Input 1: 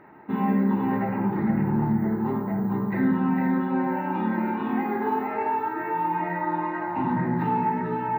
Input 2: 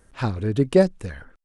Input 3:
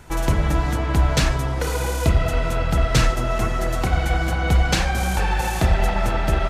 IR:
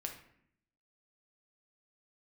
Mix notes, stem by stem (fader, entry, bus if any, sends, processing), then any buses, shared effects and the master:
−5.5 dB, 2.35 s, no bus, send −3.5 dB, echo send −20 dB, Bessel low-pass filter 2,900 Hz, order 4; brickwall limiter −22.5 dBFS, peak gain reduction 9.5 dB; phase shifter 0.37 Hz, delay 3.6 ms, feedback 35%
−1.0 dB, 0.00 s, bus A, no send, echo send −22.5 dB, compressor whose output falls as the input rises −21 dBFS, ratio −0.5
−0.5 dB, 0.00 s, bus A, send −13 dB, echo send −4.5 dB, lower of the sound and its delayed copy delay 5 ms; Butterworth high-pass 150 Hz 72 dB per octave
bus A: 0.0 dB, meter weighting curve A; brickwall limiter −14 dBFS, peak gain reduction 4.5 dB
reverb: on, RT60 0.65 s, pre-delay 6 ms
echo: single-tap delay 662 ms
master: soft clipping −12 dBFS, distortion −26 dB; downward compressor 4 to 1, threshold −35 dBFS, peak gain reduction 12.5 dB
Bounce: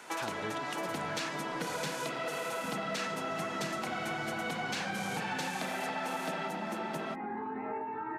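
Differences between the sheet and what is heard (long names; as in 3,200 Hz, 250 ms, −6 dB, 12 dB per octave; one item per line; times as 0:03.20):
stem 3: missing lower of the sound and its delayed copy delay 5 ms
reverb return −7.0 dB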